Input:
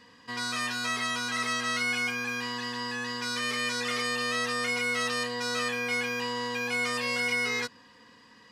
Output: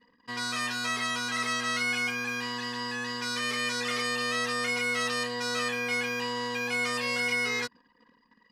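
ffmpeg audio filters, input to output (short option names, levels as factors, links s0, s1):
-af "anlmdn=0.00251"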